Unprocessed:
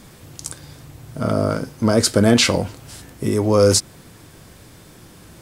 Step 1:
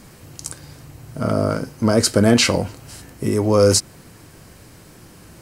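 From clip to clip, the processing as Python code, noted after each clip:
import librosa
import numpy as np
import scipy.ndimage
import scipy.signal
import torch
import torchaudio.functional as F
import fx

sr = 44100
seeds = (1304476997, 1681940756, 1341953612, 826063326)

y = fx.notch(x, sr, hz=3500.0, q=9.3)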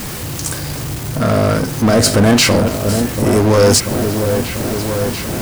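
y = fx.quant_dither(x, sr, seeds[0], bits=8, dither='triangular')
y = fx.power_curve(y, sr, exponent=0.5)
y = fx.echo_opening(y, sr, ms=688, hz=750, octaves=1, feedback_pct=70, wet_db=-6)
y = F.gain(torch.from_numpy(y), -1.0).numpy()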